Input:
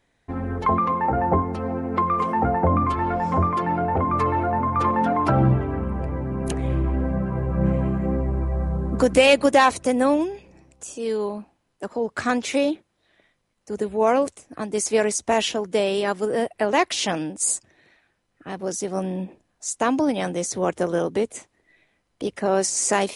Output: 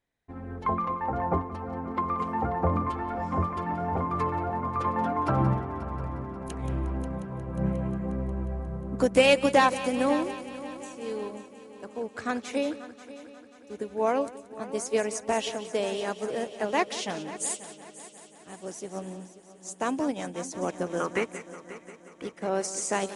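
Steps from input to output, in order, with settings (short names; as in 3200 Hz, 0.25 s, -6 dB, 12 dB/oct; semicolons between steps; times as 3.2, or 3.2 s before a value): 21–22.24 band shelf 1600 Hz +15 dB; multi-head echo 0.179 s, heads first and third, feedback 69%, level -12.5 dB; upward expander 1.5:1, over -36 dBFS; gain -3.5 dB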